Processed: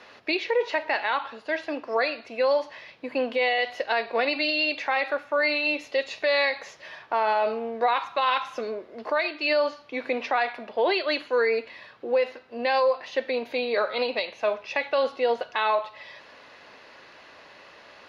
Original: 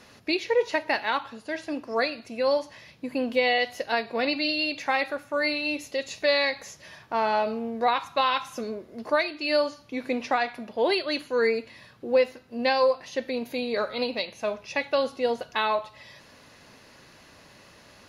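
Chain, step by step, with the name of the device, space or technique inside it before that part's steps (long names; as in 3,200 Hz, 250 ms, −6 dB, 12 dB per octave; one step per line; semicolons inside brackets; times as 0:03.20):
DJ mixer with the lows and highs turned down (three-way crossover with the lows and the highs turned down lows −16 dB, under 360 Hz, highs −22 dB, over 4,400 Hz; brickwall limiter −20.5 dBFS, peak gain reduction 8.5 dB)
level +5.5 dB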